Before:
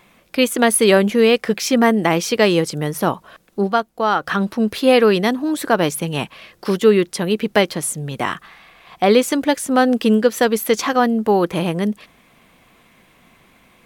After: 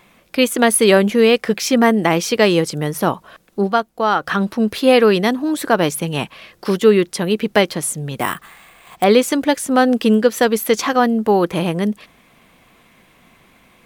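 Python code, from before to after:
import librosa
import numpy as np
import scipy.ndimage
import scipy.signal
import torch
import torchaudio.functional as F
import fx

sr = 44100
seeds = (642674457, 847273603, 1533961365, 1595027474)

y = fx.resample_bad(x, sr, factor=4, down='none', up='hold', at=(8.2, 9.04))
y = F.gain(torch.from_numpy(y), 1.0).numpy()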